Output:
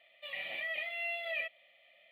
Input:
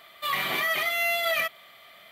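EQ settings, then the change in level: vowel filter e; fixed phaser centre 1600 Hz, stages 6; +3.5 dB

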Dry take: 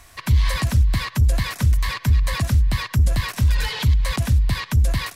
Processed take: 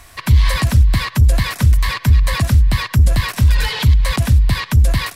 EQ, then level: bell 6400 Hz -2.5 dB 0.41 oct; +5.5 dB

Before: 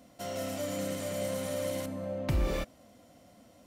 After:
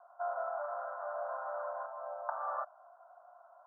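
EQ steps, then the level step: steep high-pass 650 Hz 72 dB/oct; band-pass 1100 Hz, Q 0.56; steep low-pass 1500 Hz 96 dB/oct; +8.0 dB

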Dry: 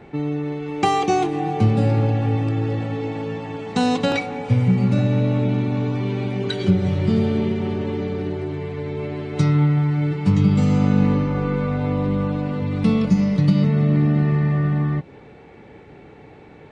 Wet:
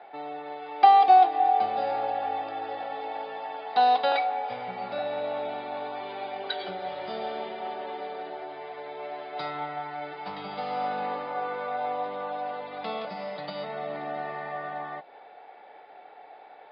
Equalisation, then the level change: resonant high-pass 720 Hz, resonance Q 4.9; rippled Chebyshev low-pass 5000 Hz, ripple 6 dB; bell 1100 Hz -6 dB 0.74 oct; -1.5 dB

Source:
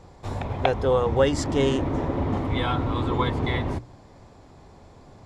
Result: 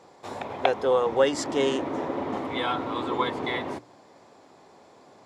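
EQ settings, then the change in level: HPF 310 Hz 12 dB/oct; 0.0 dB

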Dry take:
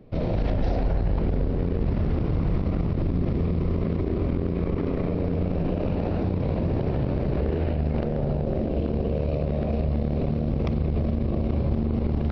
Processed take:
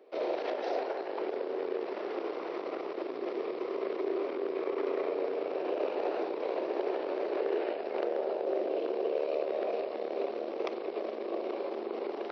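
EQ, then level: elliptic high-pass 370 Hz, stop band 80 dB; 0.0 dB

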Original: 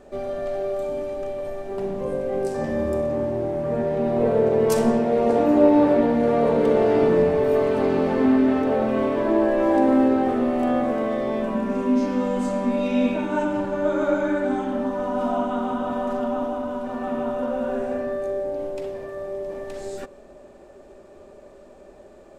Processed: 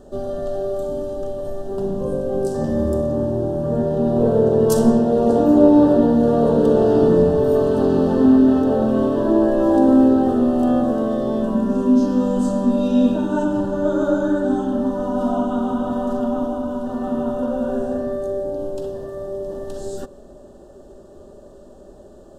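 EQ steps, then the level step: Butterworth band-stop 2200 Hz, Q 1.8; low shelf 480 Hz +12 dB; high shelf 3400 Hz +9 dB; -3.5 dB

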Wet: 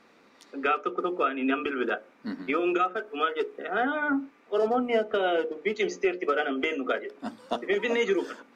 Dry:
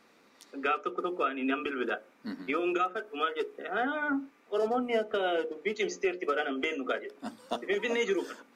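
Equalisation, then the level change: high shelf 7000 Hz -11.5 dB; +4.0 dB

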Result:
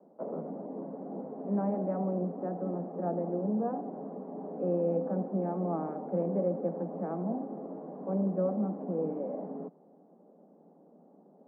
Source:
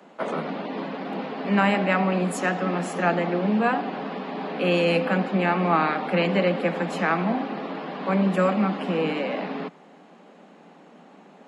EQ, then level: ladder low-pass 790 Hz, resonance 25%; air absorption 270 m; -2.5 dB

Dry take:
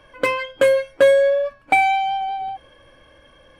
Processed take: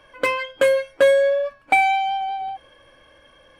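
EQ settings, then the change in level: low shelf 350 Hz -6 dB; 0.0 dB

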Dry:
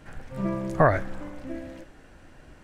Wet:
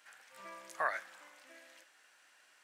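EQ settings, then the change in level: HPF 1200 Hz 12 dB/oct; high shelf 2800 Hz +7.5 dB; -8.0 dB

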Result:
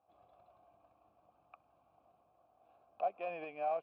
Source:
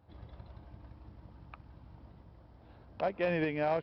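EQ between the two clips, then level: vowel filter a; +2.0 dB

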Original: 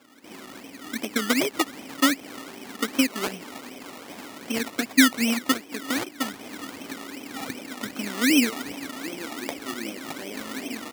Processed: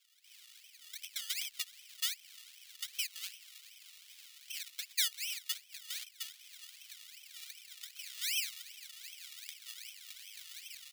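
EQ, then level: ladder high-pass 2500 Hz, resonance 30%; high shelf 10000 Hz +4.5 dB; -4.5 dB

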